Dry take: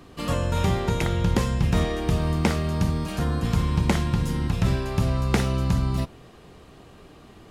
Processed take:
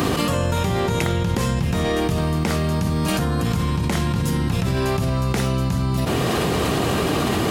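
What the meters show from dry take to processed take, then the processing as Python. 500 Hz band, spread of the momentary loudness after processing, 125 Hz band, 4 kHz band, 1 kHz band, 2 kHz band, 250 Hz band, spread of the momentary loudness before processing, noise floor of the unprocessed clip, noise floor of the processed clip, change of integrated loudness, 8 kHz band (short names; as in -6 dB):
+6.5 dB, 1 LU, +2.5 dB, +7.5 dB, +6.5 dB, +6.0 dB, +4.5 dB, 4 LU, -49 dBFS, -22 dBFS, +3.0 dB, +7.5 dB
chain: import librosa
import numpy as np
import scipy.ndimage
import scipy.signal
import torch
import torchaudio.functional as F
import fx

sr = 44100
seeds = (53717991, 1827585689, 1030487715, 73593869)

y = scipy.signal.sosfilt(scipy.signal.butter(2, 83.0, 'highpass', fs=sr, output='sos'), x)
y = fx.high_shelf(y, sr, hz=11000.0, db=8.0)
y = fx.env_flatten(y, sr, amount_pct=100)
y = y * 10.0 ** (-3.0 / 20.0)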